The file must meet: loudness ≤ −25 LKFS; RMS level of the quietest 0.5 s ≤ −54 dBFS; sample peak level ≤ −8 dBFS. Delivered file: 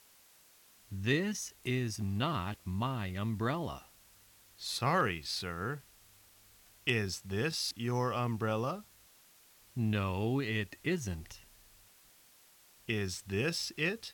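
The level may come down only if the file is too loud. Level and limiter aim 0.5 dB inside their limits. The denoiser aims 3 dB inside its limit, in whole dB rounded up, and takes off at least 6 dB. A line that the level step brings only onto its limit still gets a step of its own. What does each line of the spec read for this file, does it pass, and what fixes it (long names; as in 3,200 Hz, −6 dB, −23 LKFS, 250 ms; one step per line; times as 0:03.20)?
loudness −35.0 LKFS: in spec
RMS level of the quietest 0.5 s −62 dBFS: in spec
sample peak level −18.5 dBFS: in spec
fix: no processing needed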